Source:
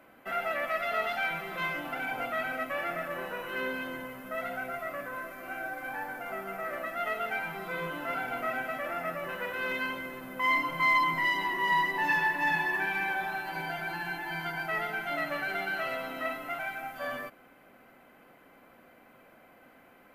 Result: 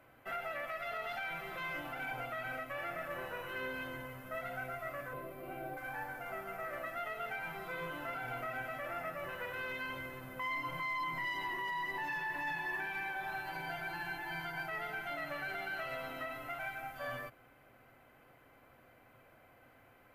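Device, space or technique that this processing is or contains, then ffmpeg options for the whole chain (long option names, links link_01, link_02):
car stereo with a boomy subwoofer: -filter_complex "[0:a]asettb=1/sr,asplit=3[link_01][link_02][link_03];[link_01]atrim=end=5.134[link_04];[link_02]atrim=start=5.13:end=5.77,asetpts=PTS-STARTPTS,afade=type=in:duration=0.004:curve=qsin,afade=type=out:start_time=0.636:duration=0.004:curve=qsin,equalizer=frequency=160:width_type=o:width=0.67:gain=8,equalizer=frequency=400:width_type=o:width=0.67:gain=11,equalizer=frequency=1600:width_type=o:width=0.67:gain=-11,equalizer=frequency=6300:width_type=o:width=0.67:gain=-11[link_05];[link_03]atrim=start=5.766[link_06];[link_04][link_05]acrossfade=duration=0.004:curve1=hsin:curve2=qsin[link_07];[link_07][link_06]acrossfade=duration=0.004:curve1=qsin:curve2=hsin,lowshelf=frequency=150:width_type=q:width=3:gain=6.5,alimiter=level_in=1.5dB:limit=-24dB:level=0:latency=1:release=117,volume=-1.5dB,volume=-5dB"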